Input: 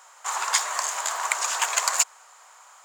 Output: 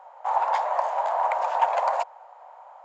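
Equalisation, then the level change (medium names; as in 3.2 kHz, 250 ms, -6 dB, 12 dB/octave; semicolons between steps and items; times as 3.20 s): tape spacing loss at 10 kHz 44 dB; high-order bell 690 Hz +15.5 dB 1.1 oct; 0.0 dB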